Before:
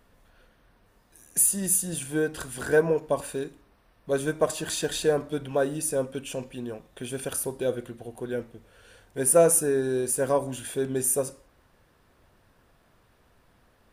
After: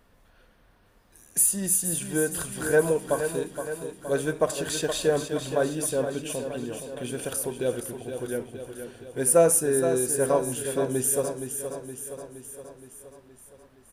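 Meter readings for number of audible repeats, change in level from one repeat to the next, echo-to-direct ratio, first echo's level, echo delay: 6, -4.5 dB, -6.5 dB, -8.5 dB, 469 ms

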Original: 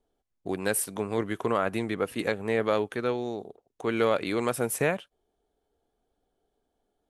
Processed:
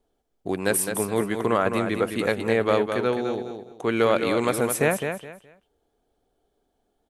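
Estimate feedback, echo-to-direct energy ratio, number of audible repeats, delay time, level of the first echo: 24%, -6.5 dB, 3, 210 ms, -7.0 dB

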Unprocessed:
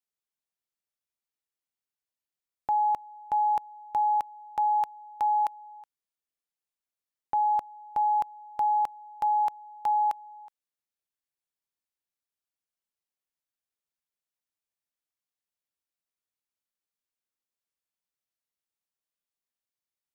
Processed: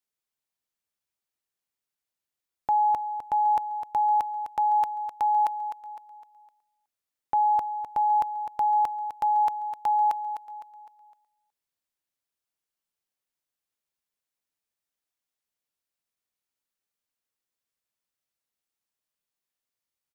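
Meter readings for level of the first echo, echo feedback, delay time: -9.5 dB, 41%, 255 ms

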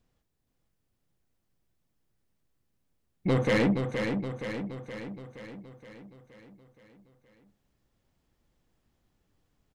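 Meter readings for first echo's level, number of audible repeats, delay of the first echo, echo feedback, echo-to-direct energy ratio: -6.0 dB, 7, 471 ms, 58%, -4.0 dB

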